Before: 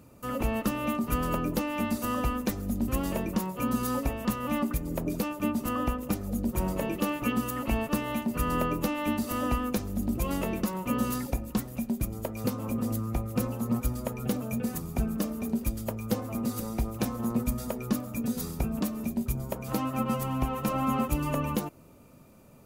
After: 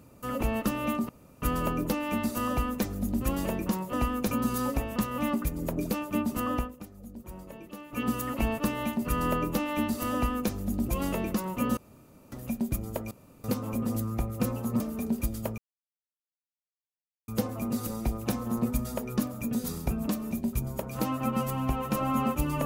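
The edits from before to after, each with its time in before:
0:01.09: splice in room tone 0.33 s
0:05.85–0:07.37: duck −14.5 dB, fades 0.20 s
0:09.43–0:09.81: duplicate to 0:03.60
0:11.06–0:11.61: fill with room tone
0:12.40: splice in room tone 0.33 s
0:13.76–0:15.23: remove
0:16.01: splice in silence 1.70 s

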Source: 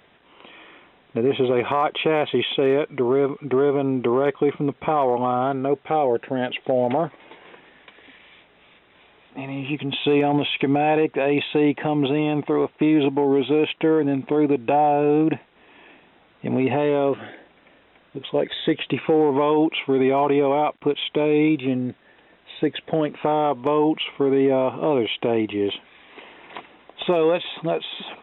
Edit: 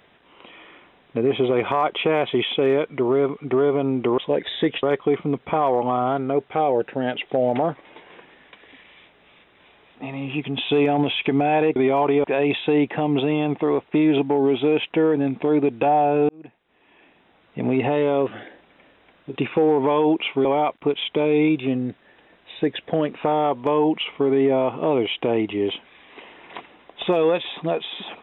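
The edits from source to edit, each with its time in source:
0:15.16–0:16.56: fade in
0:18.23–0:18.88: move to 0:04.18
0:19.97–0:20.45: move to 0:11.11

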